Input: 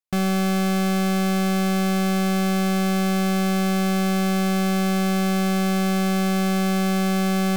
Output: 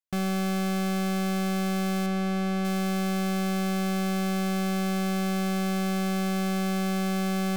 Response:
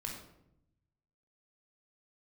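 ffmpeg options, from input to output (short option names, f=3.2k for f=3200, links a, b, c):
-filter_complex "[0:a]asettb=1/sr,asplit=3[a][b][c];[a]atrim=end=2.064[d];[b]atrim=start=2.06:end=2.65,asetpts=PTS-STARTPTS,afade=t=in:d=0.004:c=qsin,afade=t=out:st=0.586:d=0.004:c=qsin,lowpass=f=3.6k:p=1[e];[c]atrim=start=2.646[f];[d][e]acrossfade=d=0.004:c1=hsin:c2=qsin[g];[g][f]acrossfade=d=0.004:c1=qsin:c2=hsin,volume=-6dB"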